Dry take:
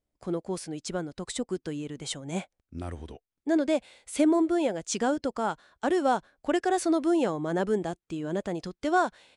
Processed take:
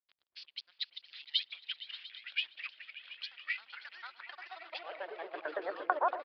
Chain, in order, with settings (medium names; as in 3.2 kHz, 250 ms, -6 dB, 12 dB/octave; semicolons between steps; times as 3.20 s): time reversed locally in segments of 134 ms; reverb removal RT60 0.92 s; three-band isolator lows -16 dB, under 230 Hz, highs -17 dB, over 2.6 kHz; compression 10:1, threshold -39 dBFS, peak gain reduction 19 dB; high-pass sweep 2.9 kHz -> 470 Hz, 4.88–7.79 s; hysteresis with a dead band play -52.5 dBFS; tempo 1.5×; band-pass sweep 4.3 kHz -> 770 Hz, 4.48–6.39 s; delay with an opening low-pass 116 ms, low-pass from 400 Hz, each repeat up 1 oct, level -3 dB; ever faster or slower copies 674 ms, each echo -4 st, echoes 2; resampled via 11.025 kHz; trim +14.5 dB